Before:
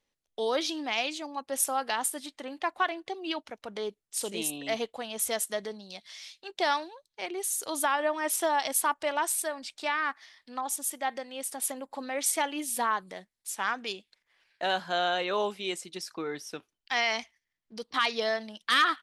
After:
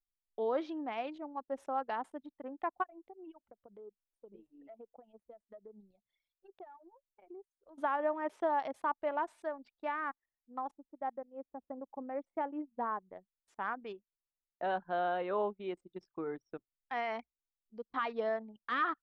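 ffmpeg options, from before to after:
-filter_complex "[0:a]asplit=3[a][b][c];[a]afade=t=out:st=2.82:d=0.02[d];[b]acompressor=threshold=-41dB:ratio=5:attack=3.2:release=140:knee=1:detection=peak,afade=t=in:st=2.82:d=0.02,afade=t=out:st=7.77:d=0.02[e];[c]afade=t=in:st=7.77:d=0.02[f];[d][e][f]amix=inputs=3:normalize=0,asplit=3[g][h][i];[g]afade=t=out:st=10.7:d=0.02[j];[h]lowpass=f=1.2k:p=1,afade=t=in:st=10.7:d=0.02,afade=t=out:st=13.07:d=0.02[k];[i]afade=t=in:st=13.07:d=0.02[l];[j][k][l]amix=inputs=3:normalize=0,anlmdn=1.58,lowpass=1.2k,volume=-3.5dB"

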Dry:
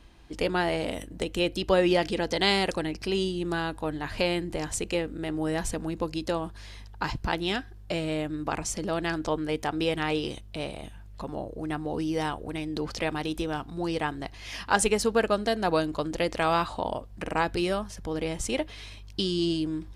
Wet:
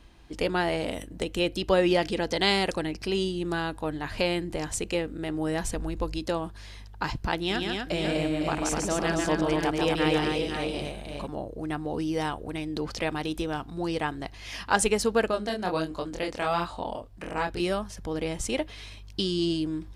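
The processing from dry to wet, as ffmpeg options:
-filter_complex "[0:a]asplit=3[a][b][c];[a]afade=t=out:st=5.74:d=0.02[d];[b]asubboost=boost=5:cutoff=77,afade=t=in:st=5.74:d=0.02,afade=t=out:st=6.18:d=0.02[e];[c]afade=t=in:st=6.18:d=0.02[f];[d][e][f]amix=inputs=3:normalize=0,asettb=1/sr,asplit=3[g][h][i];[g]atrim=end=7.364[j];[h]atrim=start=7.36:end=11.27,asetpts=PTS-STARTPTS,afade=t=in:d=0.004:c=qsin,afade=t=out:st=3.906:d=0.004:c=qsin,aecho=1:1:143|248|508|543:0.631|0.631|0.398|0.355,atrim=end_sample=172431[k];[i]atrim=start=11.266[l];[j][k]acrossfade=d=0.004:c1=hsin:c2=qsin[m];[m][l]acrossfade=d=0.004:c1=qsin:c2=hsin,asettb=1/sr,asplit=3[n][o][p];[n]atrim=end=15.314[q];[o]atrim=start=15.31:end=17.6,asetpts=PTS-STARTPTS,afade=t=in:d=0.004:c=qsin,afade=t=out:st=2.286:d=0.004:c=qsin,flanger=delay=22.5:depth=5:speed=1.4[r];[p]atrim=start=17.596[s];[q][r]acrossfade=d=0.004:c1=hsin:c2=qsin[t];[t][s]acrossfade=d=0.004:c1=qsin:c2=hsin"

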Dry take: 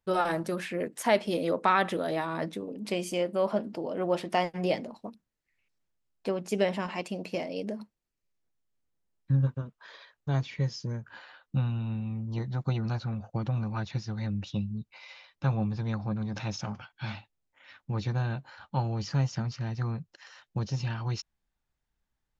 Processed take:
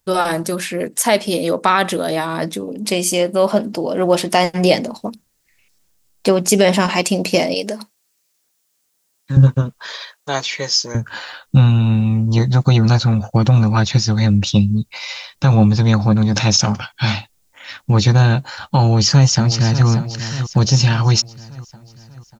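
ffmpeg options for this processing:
-filter_complex "[0:a]asettb=1/sr,asplit=3[a][b][c];[a]atrim=end=7.544[d];[b]atrim=start=7.54:end=9.37,asetpts=PTS-STARTPTS,afade=t=in:d=0.004:c=qsin,afade=t=out:st=1.826:d=0.004:c=qsin,highpass=f=730:p=1[e];[c]atrim=start=9.366[f];[d][e]acrossfade=d=0.004:c1=hsin:c2=qsin[g];[g][f]acrossfade=d=0.004:c1=qsin:c2=hsin,asettb=1/sr,asplit=3[h][i][j];[h]atrim=end=9.924[k];[i]atrim=start=9.92:end=10.95,asetpts=PTS-STARTPTS,afade=t=in:d=0.004:c=qsin,afade=t=out:st=1.026:d=0.004:c=qsin,highpass=510[l];[j]atrim=start=10.946[m];[k][l]acrossfade=d=0.004:c1=hsin:c2=qsin[n];[n][m]acrossfade=d=0.004:c1=qsin:c2=hsin,asplit=2[o][p];[p]afade=t=in:st=18.78:d=0.01,afade=t=out:st=19.87:d=0.01,aecho=0:1:590|1180|1770|2360|2950|3540:0.251189|0.138154|0.0759846|0.0417915|0.0229853|0.0126419[q];[o][q]amix=inputs=2:normalize=0,bass=f=250:g=1,treble=f=4k:g=12,dynaudnorm=f=750:g=11:m=8dB,alimiter=level_in=10.5dB:limit=-1dB:release=50:level=0:latency=1,volume=-1dB"

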